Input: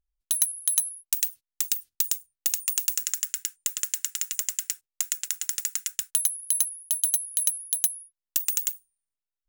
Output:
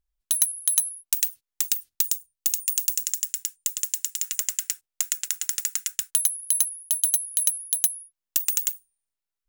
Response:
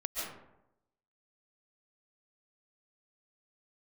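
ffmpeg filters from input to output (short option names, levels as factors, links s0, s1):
-filter_complex "[0:a]asettb=1/sr,asplit=3[s0][s1][s2];[s0]atrim=end=2.104[s3];[s1]atrim=start=2.1:end=4.23,asetpts=PTS-STARTPTS,afade=t=in:d=0.004:c=qsin,afade=t=out:st=2.126:d=0.004:c=qsin,equalizer=f=850:w=0.49:g=-12.5[s4];[s2]atrim=start=4.226[s5];[s3][s4]acrossfade=d=0.004:c1=hsin:c2=qsin[s6];[s6][s5]acrossfade=d=0.004:c1=qsin:c2=hsin,volume=1.26"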